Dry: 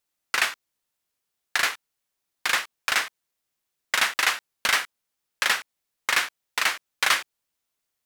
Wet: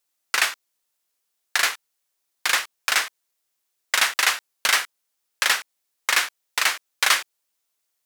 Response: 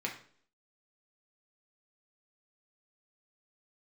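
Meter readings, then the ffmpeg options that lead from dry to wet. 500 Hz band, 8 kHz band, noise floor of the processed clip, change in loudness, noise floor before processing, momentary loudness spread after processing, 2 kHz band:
+1.0 dB, +5.0 dB, -77 dBFS, +2.5 dB, -82 dBFS, 8 LU, +1.5 dB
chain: -af "bass=f=250:g=-9,treble=f=4k:g=4,volume=1.5dB"

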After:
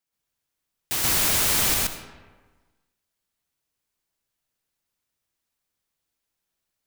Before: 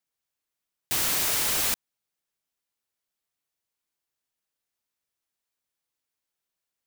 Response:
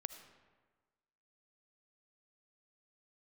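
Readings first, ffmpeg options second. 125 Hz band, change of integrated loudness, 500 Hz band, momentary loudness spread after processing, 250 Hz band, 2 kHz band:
+9.5 dB, +3.5 dB, +4.5 dB, 10 LU, +7.0 dB, +4.0 dB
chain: -filter_complex "[0:a]asplit=2[a][b];[1:a]atrim=start_sample=2205,lowshelf=f=220:g=10,adelay=128[c];[b][c]afir=irnorm=-1:irlink=0,volume=4.5dB[d];[a][d]amix=inputs=2:normalize=0"

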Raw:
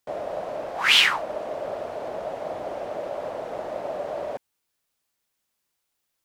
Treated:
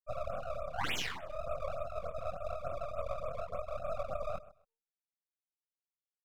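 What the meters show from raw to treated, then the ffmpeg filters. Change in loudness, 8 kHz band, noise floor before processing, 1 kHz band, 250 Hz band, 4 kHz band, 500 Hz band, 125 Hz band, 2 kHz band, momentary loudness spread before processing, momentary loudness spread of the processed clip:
-14.0 dB, -13.5 dB, -79 dBFS, -9.5 dB, -12.5 dB, -21.5 dB, -9.0 dB, +2.0 dB, -18.5 dB, 16 LU, 5 LU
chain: -af "afftfilt=real='re*gte(hypot(re,im),0.126)':imag='im*gte(hypot(re,im),0.126)':win_size=1024:overlap=0.75,equalizer=f=410:w=1.1:g=-8,bandreject=f=56.98:t=h:w=4,bandreject=f=113.96:t=h:w=4,bandreject=f=170.94:t=h:w=4,bandreject=f=227.92:t=h:w=4,bandreject=f=284.9:t=h:w=4,bandreject=f=341.88:t=h:w=4,bandreject=f=398.86:t=h:w=4,bandreject=f=455.84:t=h:w=4,acompressor=threshold=-33dB:ratio=20,flanger=delay=22.5:depth=3.6:speed=2,aecho=1:1:129|258:0.126|0.0264,aeval=exprs='max(val(0),0)':c=same,afftfilt=real='re*(1-between(b*sr/1024,220*pow(5400/220,0.5+0.5*sin(2*PI*3.4*pts/sr))/1.41,220*pow(5400/220,0.5+0.5*sin(2*PI*3.4*pts/sr))*1.41))':imag='im*(1-between(b*sr/1024,220*pow(5400/220,0.5+0.5*sin(2*PI*3.4*pts/sr))/1.41,220*pow(5400/220,0.5+0.5*sin(2*PI*3.4*pts/sr))*1.41))':win_size=1024:overlap=0.75,volume=8dB"

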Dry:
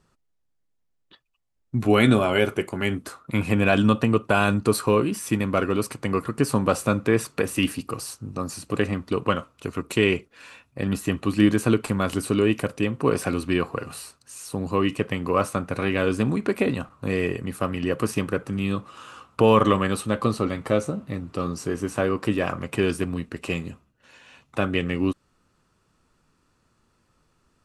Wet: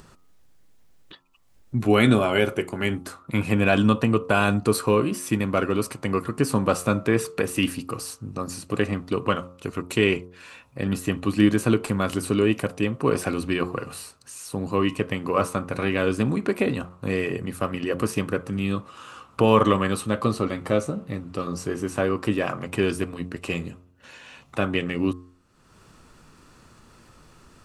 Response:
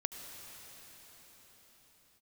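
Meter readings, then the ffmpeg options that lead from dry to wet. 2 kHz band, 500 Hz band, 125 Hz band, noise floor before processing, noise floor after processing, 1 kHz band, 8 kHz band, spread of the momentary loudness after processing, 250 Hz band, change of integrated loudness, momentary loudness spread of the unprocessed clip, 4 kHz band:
0.0 dB, -0.5 dB, -0.5 dB, -71 dBFS, -55 dBFS, -0.5 dB, 0.0 dB, 13 LU, 0.0 dB, -0.5 dB, 12 LU, 0.0 dB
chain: -af "bandreject=f=89.55:t=h:w=4,bandreject=f=179.1:t=h:w=4,bandreject=f=268.65:t=h:w=4,bandreject=f=358.2:t=h:w=4,bandreject=f=447.75:t=h:w=4,bandreject=f=537.3:t=h:w=4,bandreject=f=626.85:t=h:w=4,bandreject=f=716.4:t=h:w=4,bandreject=f=805.95:t=h:w=4,bandreject=f=895.5:t=h:w=4,bandreject=f=985.05:t=h:w=4,bandreject=f=1.0746k:t=h:w=4,bandreject=f=1.16415k:t=h:w=4,bandreject=f=1.2537k:t=h:w=4,bandreject=f=1.34325k:t=h:w=4,acompressor=mode=upward:threshold=-38dB:ratio=2.5"

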